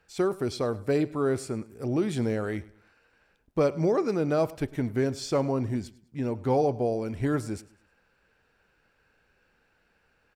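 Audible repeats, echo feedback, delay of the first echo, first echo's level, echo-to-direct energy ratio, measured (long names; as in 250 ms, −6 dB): 2, 34%, 103 ms, −20.0 dB, −19.5 dB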